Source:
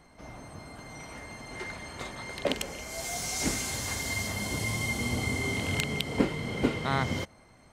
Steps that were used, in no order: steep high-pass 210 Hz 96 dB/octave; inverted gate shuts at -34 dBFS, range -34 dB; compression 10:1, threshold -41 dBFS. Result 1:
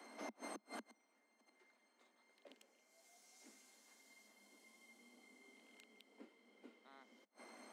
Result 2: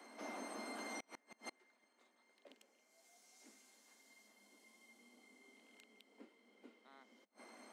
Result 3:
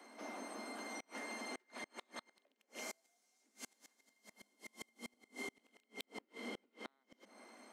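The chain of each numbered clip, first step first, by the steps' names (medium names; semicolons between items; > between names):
inverted gate > steep high-pass > compression; steep high-pass > inverted gate > compression; steep high-pass > compression > inverted gate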